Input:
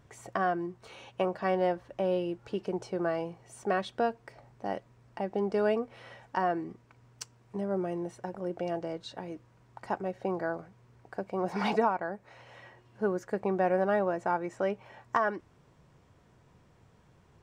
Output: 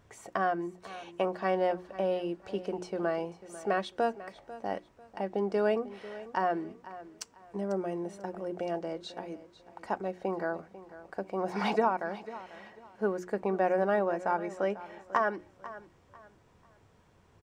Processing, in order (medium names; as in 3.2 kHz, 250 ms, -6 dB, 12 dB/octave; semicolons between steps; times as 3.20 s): peaking EQ 140 Hz -6.5 dB 0.44 oct; hum notches 60/120/180/240/300/360 Hz; feedback delay 495 ms, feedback 29%, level -16 dB